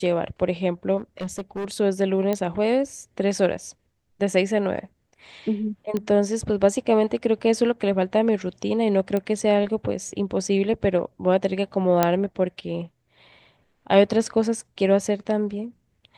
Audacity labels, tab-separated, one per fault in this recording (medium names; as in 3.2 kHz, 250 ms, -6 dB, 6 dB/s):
0.970000	1.660000	clipped -25.5 dBFS
2.330000	2.330000	pop -12 dBFS
5.970000	5.970000	pop -14 dBFS
9.170000	9.170000	pop -14 dBFS
12.030000	12.030000	pop -4 dBFS